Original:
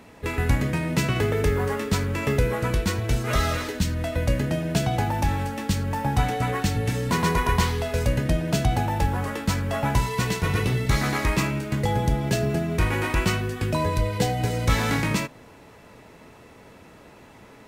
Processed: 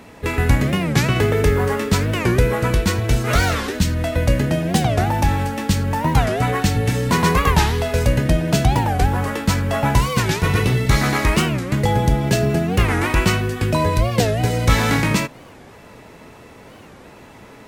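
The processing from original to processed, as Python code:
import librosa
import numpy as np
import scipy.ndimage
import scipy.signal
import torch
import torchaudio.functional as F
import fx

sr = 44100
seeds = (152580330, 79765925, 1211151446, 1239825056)

y = fx.record_warp(x, sr, rpm=45.0, depth_cents=250.0)
y = y * 10.0 ** (6.0 / 20.0)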